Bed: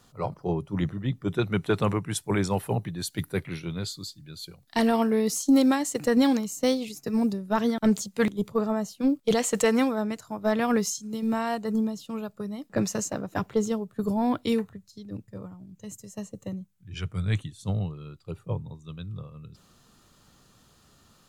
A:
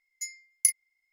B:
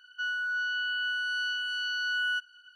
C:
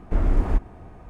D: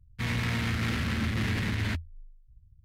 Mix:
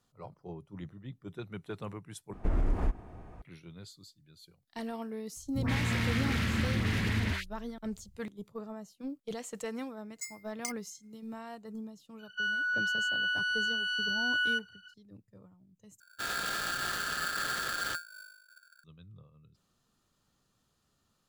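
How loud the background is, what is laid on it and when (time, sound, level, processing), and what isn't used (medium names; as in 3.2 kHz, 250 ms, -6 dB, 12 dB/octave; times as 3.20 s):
bed -16 dB
2.33 s: replace with C -5 dB + peak limiter -14.5 dBFS
5.36 s: add D -1 dB + phase dispersion highs, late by 136 ms, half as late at 880 Hz
10.00 s: add A -3 dB + careless resampling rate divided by 3×, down filtered, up hold
12.19 s: add B
16.00 s: replace with D -5.5 dB + polarity switched at an audio rate 1.5 kHz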